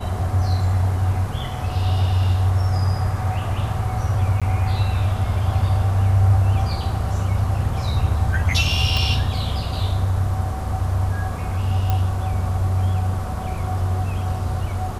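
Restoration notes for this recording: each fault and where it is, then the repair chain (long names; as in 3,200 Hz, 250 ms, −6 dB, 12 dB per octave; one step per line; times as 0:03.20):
0:04.40–0:04.42: drop-out 16 ms
0:08.97: click
0:11.90: click −9 dBFS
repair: click removal
repair the gap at 0:04.40, 16 ms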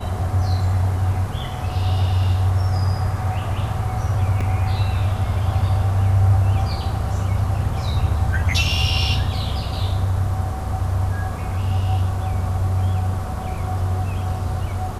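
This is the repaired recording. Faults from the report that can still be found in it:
none of them is left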